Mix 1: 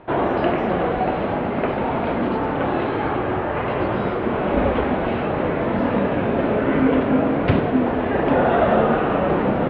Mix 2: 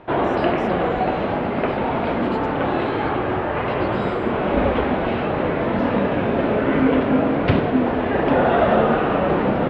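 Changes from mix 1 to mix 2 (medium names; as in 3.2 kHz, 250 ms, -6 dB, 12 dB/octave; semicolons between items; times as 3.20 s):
speech: add treble shelf 6.1 kHz +6.5 dB; master: remove distance through air 130 m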